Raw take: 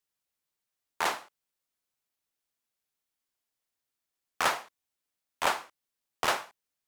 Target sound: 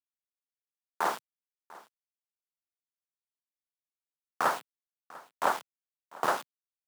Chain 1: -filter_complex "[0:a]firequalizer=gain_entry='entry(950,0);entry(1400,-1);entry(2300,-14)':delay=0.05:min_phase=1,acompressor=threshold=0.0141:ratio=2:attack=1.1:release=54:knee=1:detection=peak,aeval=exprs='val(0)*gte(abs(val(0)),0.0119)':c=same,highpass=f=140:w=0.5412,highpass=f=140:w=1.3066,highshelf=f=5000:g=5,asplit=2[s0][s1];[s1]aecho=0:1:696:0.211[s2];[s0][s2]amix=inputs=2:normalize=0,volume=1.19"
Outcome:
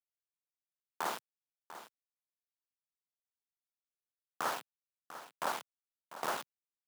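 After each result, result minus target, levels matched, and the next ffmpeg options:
compression: peak gain reduction +10 dB; echo-to-direct +7.5 dB
-filter_complex "[0:a]firequalizer=gain_entry='entry(950,0);entry(1400,-1);entry(2300,-14)':delay=0.05:min_phase=1,aeval=exprs='val(0)*gte(abs(val(0)),0.0119)':c=same,highpass=f=140:w=0.5412,highpass=f=140:w=1.3066,highshelf=f=5000:g=5,asplit=2[s0][s1];[s1]aecho=0:1:696:0.211[s2];[s0][s2]amix=inputs=2:normalize=0,volume=1.19"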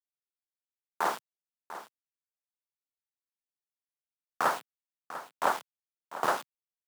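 echo-to-direct +7.5 dB
-filter_complex "[0:a]firequalizer=gain_entry='entry(950,0);entry(1400,-1);entry(2300,-14)':delay=0.05:min_phase=1,aeval=exprs='val(0)*gte(abs(val(0)),0.0119)':c=same,highpass=f=140:w=0.5412,highpass=f=140:w=1.3066,highshelf=f=5000:g=5,asplit=2[s0][s1];[s1]aecho=0:1:696:0.0891[s2];[s0][s2]amix=inputs=2:normalize=0,volume=1.19"

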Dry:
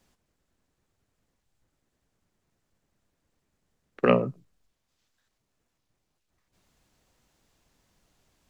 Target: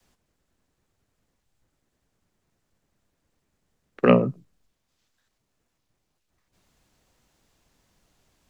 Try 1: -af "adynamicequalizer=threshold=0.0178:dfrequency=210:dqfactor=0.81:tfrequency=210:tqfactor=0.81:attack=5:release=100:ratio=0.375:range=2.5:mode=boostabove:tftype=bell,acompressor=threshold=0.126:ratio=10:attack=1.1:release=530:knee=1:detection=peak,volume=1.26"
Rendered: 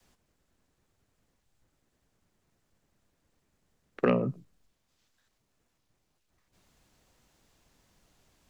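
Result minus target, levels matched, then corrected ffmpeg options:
compression: peak gain reduction +10.5 dB
-af "adynamicequalizer=threshold=0.0178:dfrequency=210:dqfactor=0.81:tfrequency=210:tqfactor=0.81:attack=5:release=100:ratio=0.375:range=2.5:mode=boostabove:tftype=bell,volume=1.26"

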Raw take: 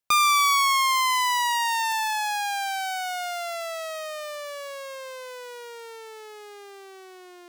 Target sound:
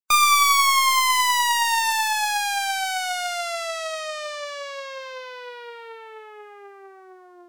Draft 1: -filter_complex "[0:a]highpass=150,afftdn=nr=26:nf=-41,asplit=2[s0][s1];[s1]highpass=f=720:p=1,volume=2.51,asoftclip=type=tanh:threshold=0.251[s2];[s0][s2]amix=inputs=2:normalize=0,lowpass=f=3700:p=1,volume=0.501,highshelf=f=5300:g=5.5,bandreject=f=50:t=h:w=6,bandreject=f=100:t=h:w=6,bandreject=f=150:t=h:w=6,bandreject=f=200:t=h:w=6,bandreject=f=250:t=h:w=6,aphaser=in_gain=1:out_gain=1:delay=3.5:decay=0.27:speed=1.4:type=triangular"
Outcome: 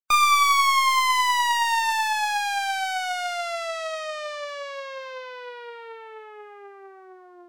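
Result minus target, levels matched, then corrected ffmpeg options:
8 kHz band -5.0 dB
-filter_complex "[0:a]highpass=150,afftdn=nr=26:nf=-41,asplit=2[s0][s1];[s1]highpass=f=720:p=1,volume=2.51,asoftclip=type=tanh:threshold=0.251[s2];[s0][s2]amix=inputs=2:normalize=0,lowpass=f=3700:p=1,volume=0.501,highshelf=f=5300:g=16,bandreject=f=50:t=h:w=6,bandreject=f=100:t=h:w=6,bandreject=f=150:t=h:w=6,bandreject=f=200:t=h:w=6,bandreject=f=250:t=h:w=6,aphaser=in_gain=1:out_gain=1:delay=3.5:decay=0.27:speed=1.4:type=triangular"

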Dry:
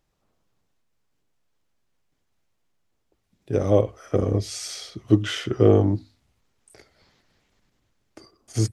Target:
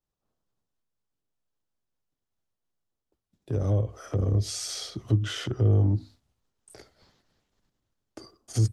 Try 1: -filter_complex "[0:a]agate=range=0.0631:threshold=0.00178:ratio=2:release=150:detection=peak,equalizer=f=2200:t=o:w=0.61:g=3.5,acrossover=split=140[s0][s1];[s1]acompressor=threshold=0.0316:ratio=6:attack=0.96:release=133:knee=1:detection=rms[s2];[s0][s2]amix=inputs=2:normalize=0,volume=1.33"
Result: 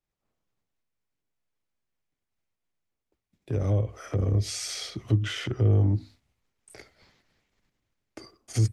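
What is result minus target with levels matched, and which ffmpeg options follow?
2 kHz band +3.5 dB
-filter_complex "[0:a]agate=range=0.0631:threshold=0.00178:ratio=2:release=150:detection=peak,equalizer=f=2200:t=o:w=0.61:g=-6,acrossover=split=140[s0][s1];[s1]acompressor=threshold=0.0316:ratio=6:attack=0.96:release=133:knee=1:detection=rms[s2];[s0][s2]amix=inputs=2:normalize=0,volume=1.33"

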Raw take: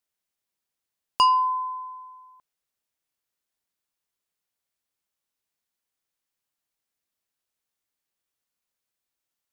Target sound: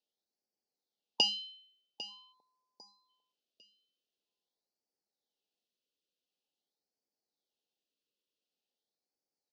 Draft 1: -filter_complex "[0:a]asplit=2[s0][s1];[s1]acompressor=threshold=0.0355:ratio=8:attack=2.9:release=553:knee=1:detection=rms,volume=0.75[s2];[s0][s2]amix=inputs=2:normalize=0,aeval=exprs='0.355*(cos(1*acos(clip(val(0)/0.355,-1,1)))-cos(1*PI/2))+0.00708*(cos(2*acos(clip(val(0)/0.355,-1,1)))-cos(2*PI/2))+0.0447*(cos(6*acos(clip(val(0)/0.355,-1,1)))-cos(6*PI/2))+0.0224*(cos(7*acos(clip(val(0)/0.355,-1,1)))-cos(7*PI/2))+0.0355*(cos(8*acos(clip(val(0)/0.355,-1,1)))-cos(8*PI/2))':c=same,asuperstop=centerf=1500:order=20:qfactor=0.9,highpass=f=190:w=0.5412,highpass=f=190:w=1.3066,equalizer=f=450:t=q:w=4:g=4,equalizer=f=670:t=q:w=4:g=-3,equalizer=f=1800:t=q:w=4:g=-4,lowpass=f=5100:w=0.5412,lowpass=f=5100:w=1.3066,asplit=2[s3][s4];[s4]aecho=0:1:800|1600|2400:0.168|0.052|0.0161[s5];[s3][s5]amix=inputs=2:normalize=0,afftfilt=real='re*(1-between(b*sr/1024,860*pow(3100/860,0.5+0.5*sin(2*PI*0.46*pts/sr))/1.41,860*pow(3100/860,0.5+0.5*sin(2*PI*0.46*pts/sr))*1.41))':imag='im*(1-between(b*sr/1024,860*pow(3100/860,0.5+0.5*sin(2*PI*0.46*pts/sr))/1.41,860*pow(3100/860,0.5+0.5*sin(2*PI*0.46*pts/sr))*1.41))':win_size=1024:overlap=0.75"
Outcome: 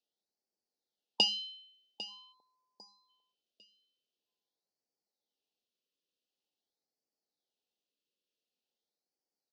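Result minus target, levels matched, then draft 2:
compression: peak gain reduction -10.5 dB
-filter_complex "[0:a]asplit=2[s0][s1];[s1]acompressor=threshold=0.00891:ratio=8:attack=2.9:release=553:knee=1:detection=rms,volume=0.75[s2];[s0][s2]amix=inputs=2:normalize=0,aeval=exprs='0.355*(cos(1*acos(clip(val(0)/0.355,-1,1)))-cos(1*PI/2))+0.00708*(cos(2*acos(clip(val(0)/0.355,-1,1)))-cos(2*PI/2))+0.0447*(cos(6*acos(clip(val(0)/0.355,-1,1)))-cos(6*PI/2))+0.0224*(cos(7*acos(clip(val(0)/0.355,-1,1)))-cos(7*PI/2))+0.0355*(cos(8*acos(clip(val(0)/0.355,-1,1)))-cos(8*PI/2))':c=same,asuperstop=centerf=1500:order=20:qfactor=0.9,highpass=f=190:w=0.5412,highpass=f=190:w=1.3066,equalizer=f=450:t=q:w=4:g=4,equalizer=f=670:t=q:w=4:g=-3,equalizer=f=1800:t=q:w=4:g=-4,lowpass=f=5100:w=0.5412,lowpass=f=5100:w=1.3066,asplit=2[s3][s4];[s4]aecho=0:1:800|1600|2400:0.168|0.052|0.0161[s5];[s3][s5]amix=inputs=2:normalize=0,afftfilt=real='re*(1-between(b*sr/1024,860*pow(3100/860,0.5+0.5*sin(2*PI*0.46*pts/sr))/1.41,860*pow(3100/860,0.5+0.5*sin(2*PI*0.46*pts/sr))*1.41))':imag='im*(1-between(b*sr/1024,860*pow(3100/860,0.5+0.5*sin(2*PI*0.46*pts/sr))/1.41,860*pow(3100/860,0.5+0.5*sin(2*PI*0.46*pts/sr))*1.41))':win_size=1024:overlap=0.75"

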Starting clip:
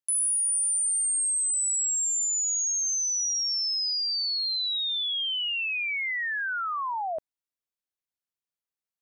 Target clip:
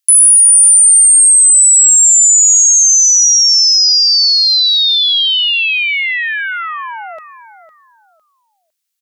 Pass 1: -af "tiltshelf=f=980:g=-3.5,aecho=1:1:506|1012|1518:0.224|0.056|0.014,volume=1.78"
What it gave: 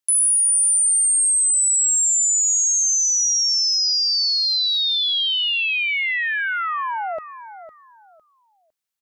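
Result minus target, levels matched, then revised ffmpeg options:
1 kHz band +10.0 dB
-af "tiltshelf=f=980:g=-15,aecho=1:1:506|1012|1518:0.224|0.056|0.014,volume=1.78"

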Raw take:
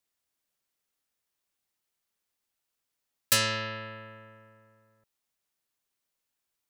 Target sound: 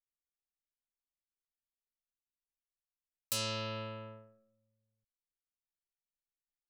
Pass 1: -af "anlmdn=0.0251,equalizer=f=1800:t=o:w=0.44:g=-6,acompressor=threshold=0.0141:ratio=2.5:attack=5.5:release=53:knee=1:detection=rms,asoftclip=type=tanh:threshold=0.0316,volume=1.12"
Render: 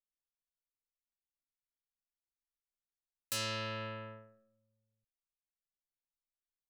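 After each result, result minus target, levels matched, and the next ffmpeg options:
saturation: distortion +13 dB; 2 kHz band +4.0 dB
-af "anlmdn=0.0251,equalizer=f=1800:t=o:w=0.44:g=-6,acompressor=threshold=0.0141:ratio=2.5:attack=5.5:release=53:knee=1:detection=rms,asoftclip=type=tanh:threshold=0.1,volume=1.12"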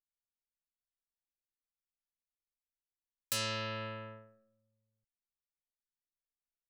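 2 kHz band +3.5 dB
-af "anlmdn=0.0251,equalizer=f=1800:t=o:w=0.44:g=-17,acompressor=threshold=0.0141:ratio=2.5:attack=5.5:release=53:knee=1:detection=rms,asoftclip=type=tanh:threshold=0.1,volume=1.12"

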